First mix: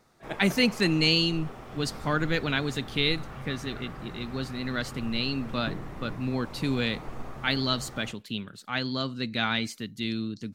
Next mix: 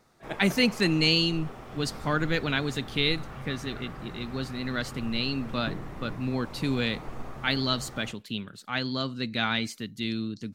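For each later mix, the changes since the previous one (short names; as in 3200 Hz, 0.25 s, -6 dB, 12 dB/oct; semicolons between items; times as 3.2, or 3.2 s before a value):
none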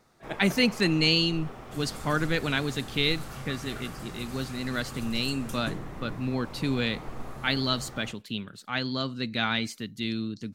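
second sound: remove air absorption 360 m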